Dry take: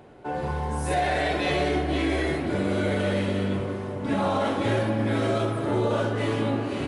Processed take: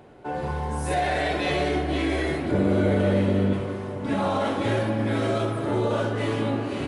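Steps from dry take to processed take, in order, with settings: 2.51–3.53 tilt shelf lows +5 dB, about 1200 Hz

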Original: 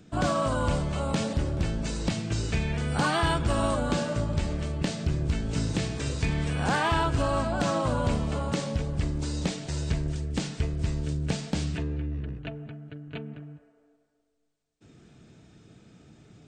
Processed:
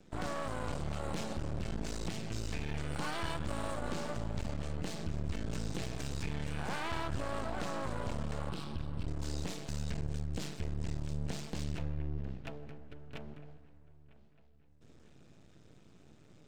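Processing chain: 8.49–9.08 fixed phaser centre 1900 Hz, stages 6; limiter -23 dBFS, peak gain reduction 6 dB; half-wave rectifier; dark delay 0.953 s, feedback 50%, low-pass 3100 Hz, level -20 dB; gain -3 dB

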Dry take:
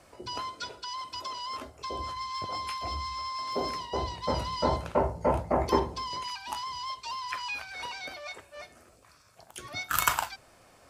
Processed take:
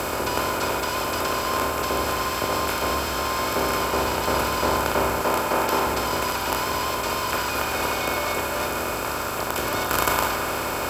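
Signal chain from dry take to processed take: per-bin compression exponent 0.2; 5.21–5.87 low shelf 110 Hz -11.5 dB; band-limited delay 64 ms, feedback 84%, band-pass 1500 Hz, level -8.5 dB; gain -3 dB

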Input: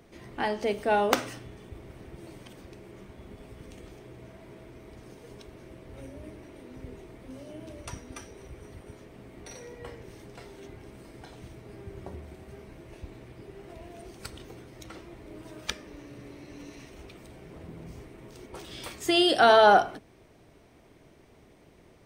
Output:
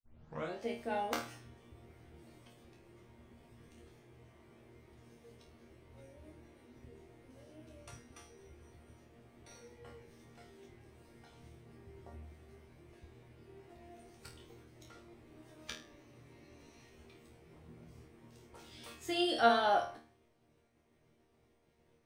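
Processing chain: tape start at the beginning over 0.59 s; expander -52 dBFS; resonator bank D#2 fifth, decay 0.35 s

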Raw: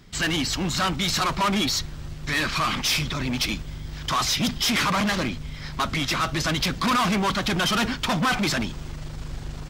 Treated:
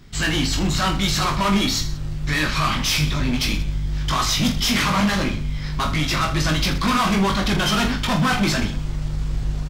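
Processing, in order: low shelf 110 Hz +9 dB; reverse bouncing-ball echo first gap 20 ms, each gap 1.3×, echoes 5

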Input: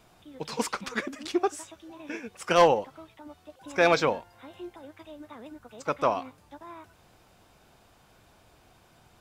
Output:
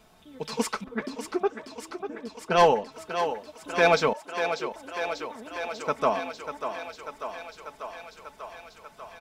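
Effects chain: 4.13–4.72 sine-wave speech; comb 4.6 ms, depth 53%; 0.84–2.92 low-pass opened by the level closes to 410 Hz, open at -15.5 dBFS; thinning echo 0.592 s, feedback 77%, high-pass 280 Hz, level -8 dB

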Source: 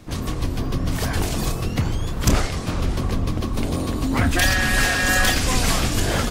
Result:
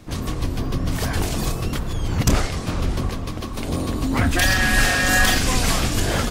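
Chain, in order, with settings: 1.73–2.27 reverse; 3.09–3.68 low shelf 430 Hz -6.5 dB; 4.45–5.5 doubler 42 ms -6 dB

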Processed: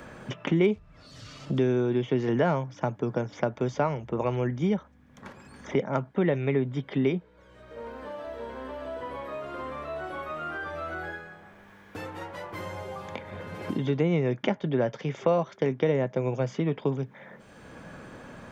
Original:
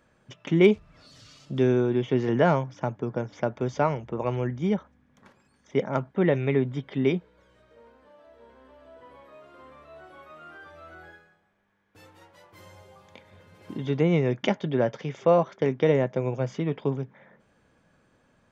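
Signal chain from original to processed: three-band squash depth 70%; gain -1 dB

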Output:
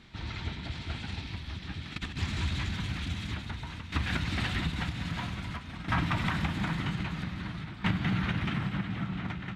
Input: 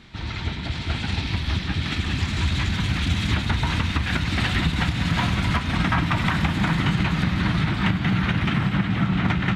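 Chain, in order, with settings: tremolo saw down 0.51 Hz, depth 80%; 1.62–2.17 negative-ratio compressor -29 dBFS, ratio -0.5; gain -6.5 dB

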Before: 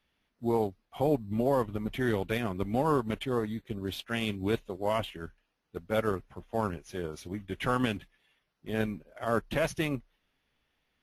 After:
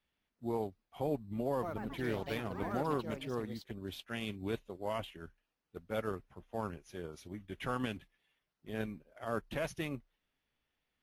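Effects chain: 1.49–4.12 echoes that change speed 0.136 s, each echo +4 st, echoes 3, each echo -6 dB; gain -8 dB

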